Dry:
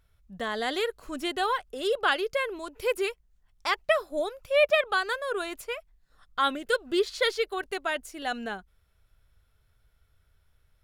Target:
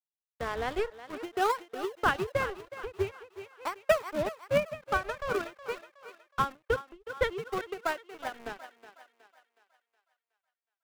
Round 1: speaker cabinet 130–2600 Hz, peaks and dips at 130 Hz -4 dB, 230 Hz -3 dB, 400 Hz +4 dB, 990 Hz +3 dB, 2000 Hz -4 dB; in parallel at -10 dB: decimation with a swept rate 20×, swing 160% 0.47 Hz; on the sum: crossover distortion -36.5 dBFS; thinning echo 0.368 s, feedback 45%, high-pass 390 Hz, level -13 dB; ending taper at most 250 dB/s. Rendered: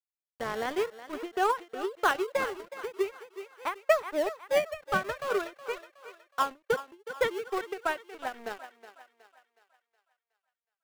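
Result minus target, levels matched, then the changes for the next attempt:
decimation with a swept rate: distortion -14 dB
change: decimation with a swept rate 66×, swing 160% 0.47 Hz

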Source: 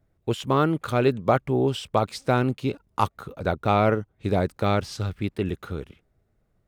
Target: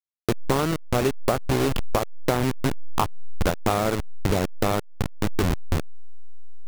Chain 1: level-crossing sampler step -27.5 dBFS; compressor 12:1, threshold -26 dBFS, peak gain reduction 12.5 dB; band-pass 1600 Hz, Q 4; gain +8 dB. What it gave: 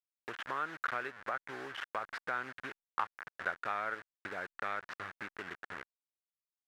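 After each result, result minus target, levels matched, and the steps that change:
2000 Hz band +10.0 dB; level-crossing sampler: distortion -8 dB
remove: band-pass 1600 Hz, Q 4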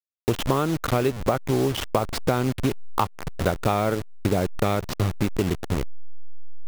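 level-crossing sampler: distortion -8 dB
change: level-crossing sampler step -19 dBFS

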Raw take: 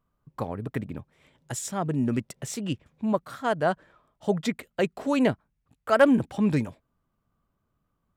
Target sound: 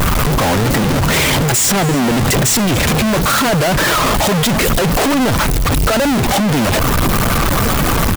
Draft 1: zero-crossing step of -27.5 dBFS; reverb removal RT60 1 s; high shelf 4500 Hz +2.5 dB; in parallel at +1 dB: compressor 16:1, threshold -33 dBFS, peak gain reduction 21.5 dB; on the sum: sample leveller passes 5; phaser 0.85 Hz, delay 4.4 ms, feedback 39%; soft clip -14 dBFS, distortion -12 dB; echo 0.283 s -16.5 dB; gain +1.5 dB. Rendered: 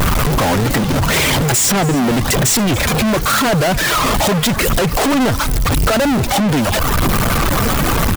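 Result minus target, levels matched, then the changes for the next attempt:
compressor: peak gain reduction -8.5 dB; zero-crossing step: distortion -7 dB
change: zero-crossing step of -17 dBFS; change: compressor 16:1, threshold -41 dBFS, peak gain reduction 30 dB

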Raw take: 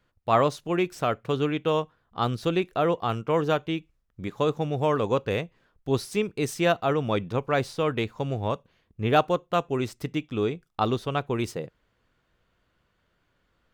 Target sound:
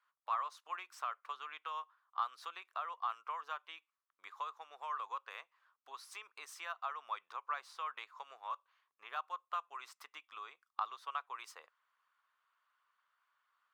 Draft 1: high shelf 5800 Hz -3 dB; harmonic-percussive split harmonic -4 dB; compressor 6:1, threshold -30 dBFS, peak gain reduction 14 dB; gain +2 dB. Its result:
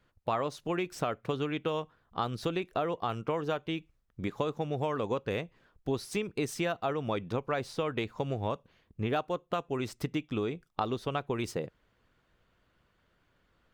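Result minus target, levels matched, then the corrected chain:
1000 Hz band -5.5 dB
high shelf 5800 Hz -3 dB; harmonic-percussive split harmonic -4 dB; compressor 6:1, threshold -30 dBFS, peak gain reduction 14 dB; ladder high-pass 1000 Hz, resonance 65%; gain +2 dB

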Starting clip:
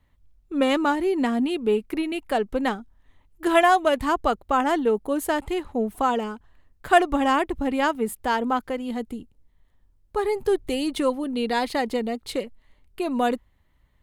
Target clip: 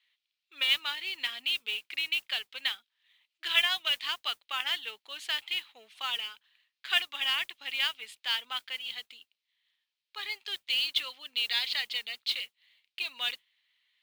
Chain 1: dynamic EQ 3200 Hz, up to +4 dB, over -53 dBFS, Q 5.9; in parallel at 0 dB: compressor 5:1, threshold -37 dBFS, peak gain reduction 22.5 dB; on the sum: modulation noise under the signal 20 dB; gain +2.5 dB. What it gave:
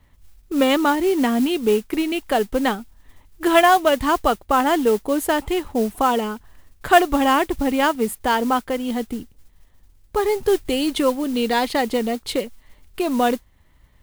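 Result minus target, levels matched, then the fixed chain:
4000 Hz band -12.5 dB
dynamic EQ 3200 Hz, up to +4 dB, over -53 dBFS, Q 5.9; Butterworth band-pass 3300 Hz, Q 1.5; in parallel at 0 dB: compressor 5:1, threshold -37 dBFS, peak gain reduction 13 dB; on the sum: modulation noise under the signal 20 dB; gain +2.5 dB

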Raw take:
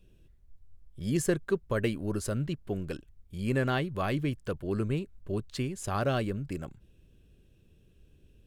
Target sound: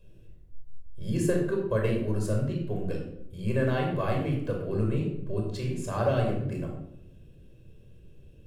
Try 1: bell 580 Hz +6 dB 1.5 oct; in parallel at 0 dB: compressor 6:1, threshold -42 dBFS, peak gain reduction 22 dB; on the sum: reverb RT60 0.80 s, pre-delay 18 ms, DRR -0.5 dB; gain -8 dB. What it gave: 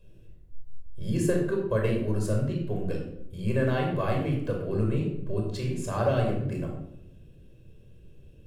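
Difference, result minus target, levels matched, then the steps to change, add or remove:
compressor: peak gain reduction -9 dB
change: compressor 6:1, threshold -53 dBFS, peak gain reduction 31 dB

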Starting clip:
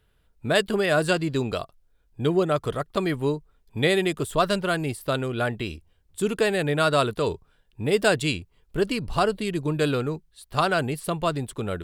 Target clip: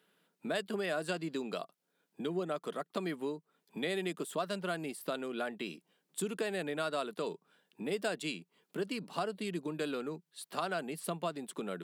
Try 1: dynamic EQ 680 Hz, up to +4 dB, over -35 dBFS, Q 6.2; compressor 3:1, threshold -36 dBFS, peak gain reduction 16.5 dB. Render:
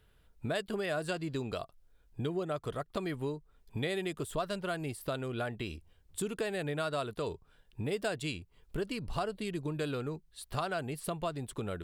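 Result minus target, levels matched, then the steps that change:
125 Hz band +7.0 dB
add after compressor: Chebyshev high-pass 170 Hz, order 5

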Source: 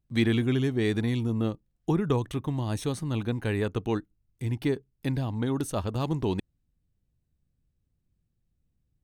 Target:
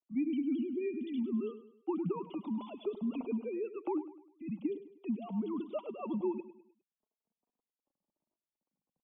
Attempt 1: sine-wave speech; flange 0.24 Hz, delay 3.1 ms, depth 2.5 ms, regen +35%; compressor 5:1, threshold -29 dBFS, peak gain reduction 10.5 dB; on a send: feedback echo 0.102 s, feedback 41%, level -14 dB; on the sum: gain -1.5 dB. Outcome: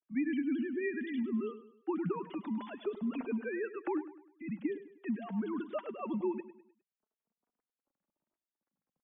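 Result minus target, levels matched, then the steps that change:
2000 Hz band +12.5 dB
add after compressor: Butterworth band-stop 1700 Hz, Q 1.1

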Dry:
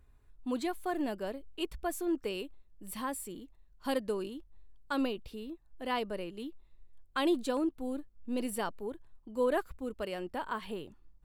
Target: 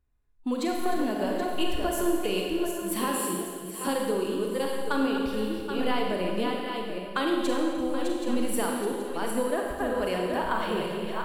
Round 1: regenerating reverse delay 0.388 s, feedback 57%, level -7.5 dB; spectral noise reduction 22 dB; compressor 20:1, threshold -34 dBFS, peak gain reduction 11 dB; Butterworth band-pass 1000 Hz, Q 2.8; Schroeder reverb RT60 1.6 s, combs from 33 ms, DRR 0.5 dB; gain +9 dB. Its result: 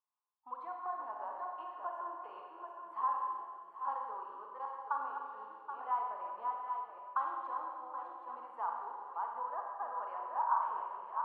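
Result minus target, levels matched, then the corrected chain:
1000 Hz band +8.5 dB
regenerating reverse delay 0.388 s, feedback 57%, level -7.5 dB; spectral noise reduction 22 dB; compressor 20:1, threshold -34 dBFS, peak gain reduction 11 dB; Schroeder reverb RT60 1.6 s, combs from 33 ms, DRR 0.5 dB; gain +9 dB

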